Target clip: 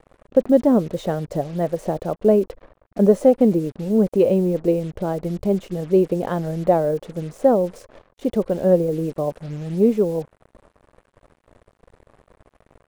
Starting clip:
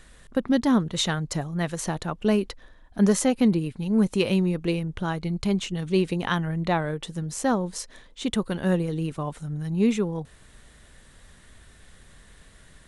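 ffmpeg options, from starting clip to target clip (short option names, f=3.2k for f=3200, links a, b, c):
-af "firequalizer=gain_entry='entry(140,0);entry(570,14);entry(930,-2);entry(1500,-8);entry(2500,-12);entry(3900,-16)':delay=0.05:min_phase=1,acrusher=bits=6:mix=0:aa=0.5"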